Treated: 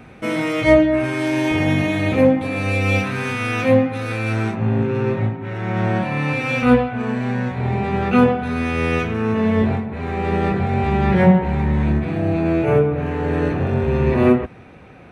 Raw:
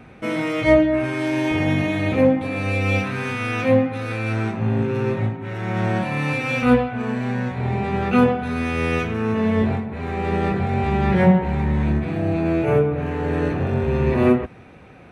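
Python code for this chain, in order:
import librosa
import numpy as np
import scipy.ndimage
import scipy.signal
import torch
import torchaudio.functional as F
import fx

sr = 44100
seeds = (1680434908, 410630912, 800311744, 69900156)

y = fx.high_shelf(x, sr, hz=5900.0, db=fx.steps((0.0, 4.5), (4.54, -9.5), (6.36, -3.0)))
y = F.gain(torch.from_numpy(y), 2.0).numpy()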